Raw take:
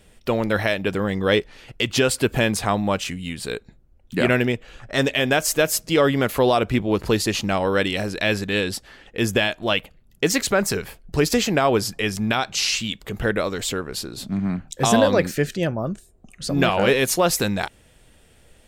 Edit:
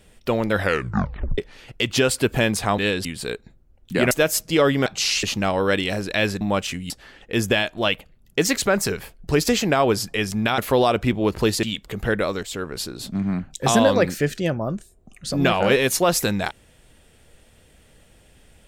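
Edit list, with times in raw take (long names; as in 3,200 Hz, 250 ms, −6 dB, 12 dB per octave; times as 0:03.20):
0:00.55: tape stop 0.83 s
0:02.78–0:03.27: swap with 0:08.48–0:08.75
0:04.33–0:05.50: remove
0:06.25–0:07.30: swap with 0:12.43–0:12.80
0:13.60–0:13.85: fade in, from −12.5 dB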